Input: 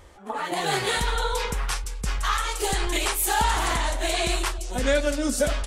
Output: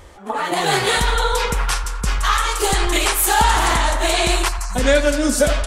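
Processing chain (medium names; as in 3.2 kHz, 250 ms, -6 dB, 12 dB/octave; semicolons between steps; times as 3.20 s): time-frequency box 4.49–4.75 s, 210–3900 Hz -28 dB; band-passed feedback delay 86 ms, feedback 84%, band-pass 1.2 kHz, level -11.5 dB; trim +7 dB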